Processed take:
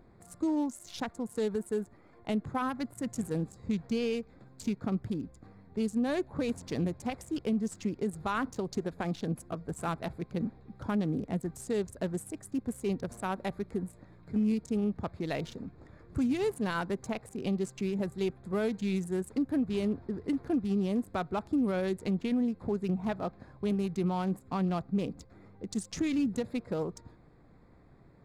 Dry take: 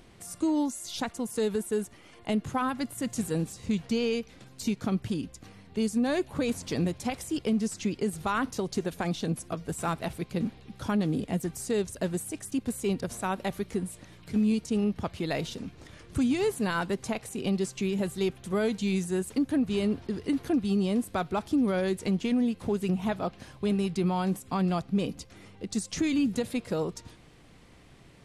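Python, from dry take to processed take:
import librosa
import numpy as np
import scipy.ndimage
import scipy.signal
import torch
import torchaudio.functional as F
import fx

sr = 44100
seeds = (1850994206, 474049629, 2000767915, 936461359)

y = fx.wiener(x, sr, points=15)
y = y * librosa.db_to_amplitude(-3.0)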